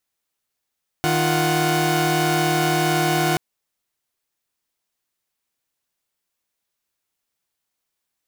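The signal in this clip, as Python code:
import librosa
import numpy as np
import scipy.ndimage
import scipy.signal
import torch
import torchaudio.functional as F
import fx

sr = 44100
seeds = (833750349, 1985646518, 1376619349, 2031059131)

y = fx.chord(sr, length_s=2.33, notes=(51, 65, 78), wave='saw', level_db=-19.5)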